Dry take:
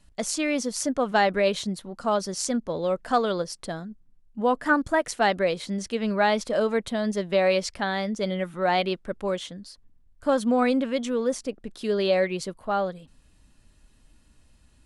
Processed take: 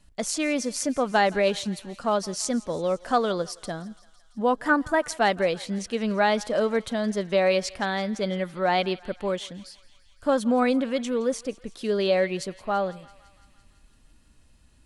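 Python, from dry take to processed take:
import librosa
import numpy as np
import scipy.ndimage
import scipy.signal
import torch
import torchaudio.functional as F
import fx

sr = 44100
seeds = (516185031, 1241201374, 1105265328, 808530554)

y = fx.echo_thinned(x, sr, ms=168, feedback_pct=74, hz=820.0, wet_db=-20.0)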